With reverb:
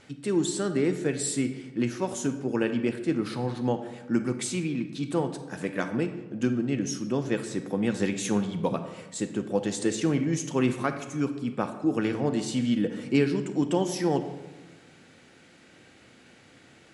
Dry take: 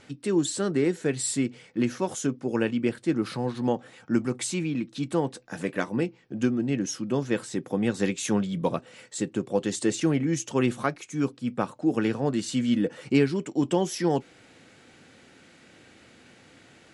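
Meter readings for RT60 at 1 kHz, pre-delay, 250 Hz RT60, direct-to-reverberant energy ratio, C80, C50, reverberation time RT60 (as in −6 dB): 1.1 s, 31 ms, 1.6 s, 8.5 dB, 12.0 dB, 9.5 dB, 1.2 s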